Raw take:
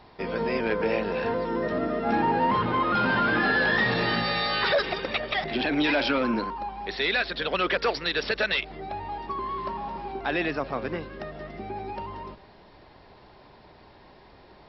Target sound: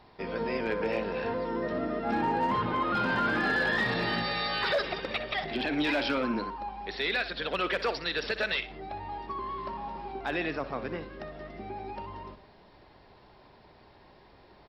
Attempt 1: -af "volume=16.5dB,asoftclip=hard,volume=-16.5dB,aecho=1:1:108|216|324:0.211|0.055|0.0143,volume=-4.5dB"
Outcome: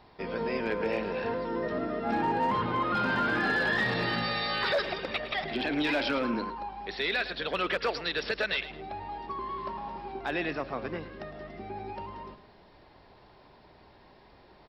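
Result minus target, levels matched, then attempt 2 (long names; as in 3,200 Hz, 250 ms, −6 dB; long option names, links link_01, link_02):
echo 46 ms late
-af "volume=16.5dB,asoftclip=hard,volume=-16.5dB,aecho=1:1:62|124|186:0.211|0.055|0.0143,volume=-4.5dB"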